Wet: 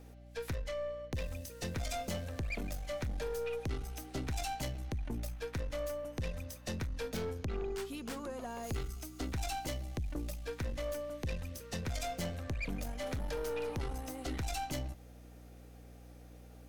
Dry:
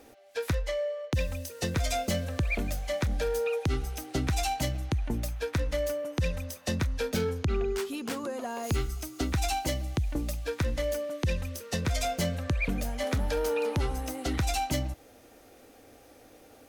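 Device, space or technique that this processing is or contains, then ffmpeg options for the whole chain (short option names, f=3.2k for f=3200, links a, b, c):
valve amplifier with mains hum: -af "aeval=exprs='(tanh(20*val(0)+0.4)-tanh(0.4))/20':c=same,aeval=exprs='val(0)+0.00447*(sin(2*PI*60*n/s)+sin(2*PI*2*60*n/s)/2+sin(2*PI*3*60*n/s)/3+sin(2*PI*4*60*n/s)/4+sin(2*PI*5*60*n/s)/5)':c=same,volume=-5.5dB"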